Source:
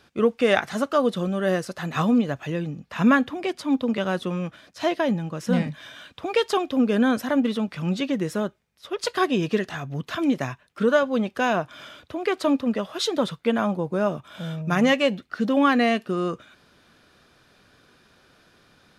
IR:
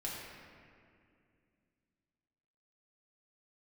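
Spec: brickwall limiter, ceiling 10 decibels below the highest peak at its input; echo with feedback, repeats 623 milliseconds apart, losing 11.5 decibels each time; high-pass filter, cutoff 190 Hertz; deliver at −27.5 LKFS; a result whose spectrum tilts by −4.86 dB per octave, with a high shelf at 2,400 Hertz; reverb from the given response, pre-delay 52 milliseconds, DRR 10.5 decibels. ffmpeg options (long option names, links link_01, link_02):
-filter_complex "[0:a]highpass=190,highshelf=frequency=2400:gain=-5,alimiter=limit=-15.5dB:level=0:latency=1,aecho=1:1:623|1246|1869:0.266|0.0718|0.0194,asplit=2[link_01][link_02];[1:a]atrim=start_sample=2205,adelay=52[link_03];[link_02][link_03]afir=irnorm=-1:irlink=0,volume=-12dB[link_04];[link_01][link_04]amix=inputs=2:normalize=0,volume=-0.5dB"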